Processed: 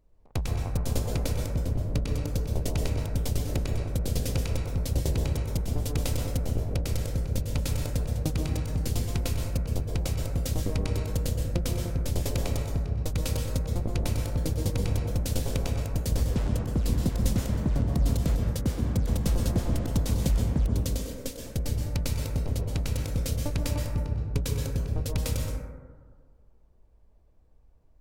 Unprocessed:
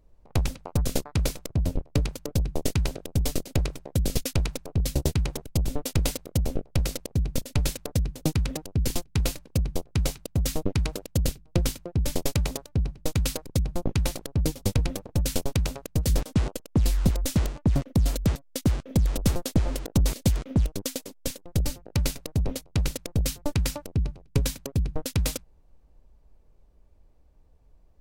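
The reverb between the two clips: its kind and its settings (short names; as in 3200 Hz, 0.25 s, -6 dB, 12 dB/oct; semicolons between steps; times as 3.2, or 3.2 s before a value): plate-style reverb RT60 1.6 s, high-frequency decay 0.25×, pre-delay 0.11 s, DRR -0.5 dB; gain -5.5 dB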